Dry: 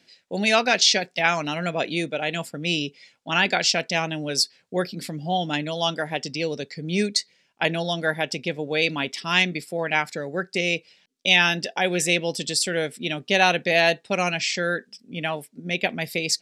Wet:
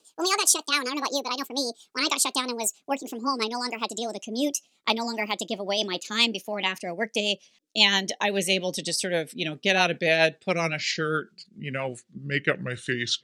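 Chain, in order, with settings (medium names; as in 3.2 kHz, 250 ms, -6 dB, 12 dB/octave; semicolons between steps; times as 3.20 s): gliding tape speed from 175% -> 73%; rotary cabinet horn 7.5 Hz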